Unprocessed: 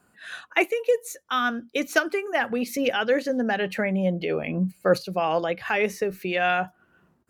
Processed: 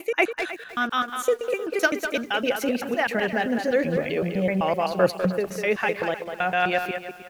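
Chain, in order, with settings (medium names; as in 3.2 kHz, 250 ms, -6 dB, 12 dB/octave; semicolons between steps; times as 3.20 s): slices played last to first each 128 ms, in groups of 6; speakerphone echo 200 ms, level -6 dB; bit-crushed delay 311 ms, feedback 35%, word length 7-bit, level -14 dB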